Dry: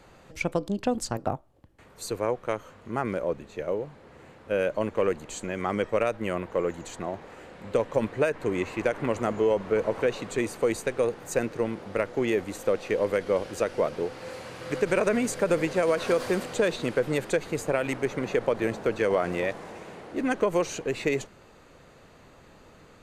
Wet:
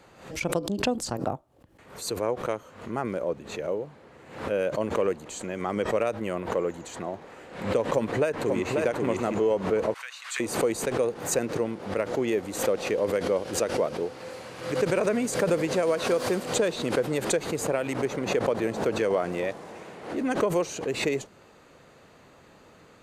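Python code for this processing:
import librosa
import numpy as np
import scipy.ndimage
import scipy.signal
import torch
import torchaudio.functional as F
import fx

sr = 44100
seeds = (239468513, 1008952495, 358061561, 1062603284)

y = fx.echo_throw(x, sr, start_s=7.86, length_s=0.94, ms=540, feedback_pct=10, wet_db=-3.5)
y = fx.highpass(y, sr, hz=1400.0, slope=24, at=(9.94, 10.4))
y = fx.highpass(y, sr, hz=110.0, slope=6)
y = fx.dynamic_eq(y, sr, hz=1900.0, q=0.85, threshold_db=-44.0, ratio=4.0, max_db=-4)
y = fx.pre_swell(y, sr, db_per_s=96.0)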